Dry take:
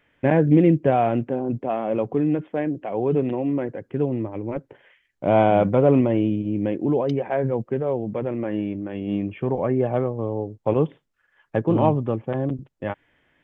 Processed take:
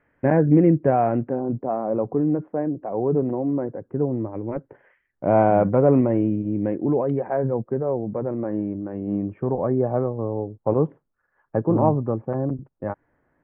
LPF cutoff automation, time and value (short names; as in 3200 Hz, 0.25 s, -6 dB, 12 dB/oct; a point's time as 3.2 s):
LPF 24 dB/oct
1.23 s 1800 Hz
1.77 s 1300 Hz
4.07 s 1300 Hz
4.48 s 1800 Hz
7.04 s 1800 Hz
7.53 s 1400 Hz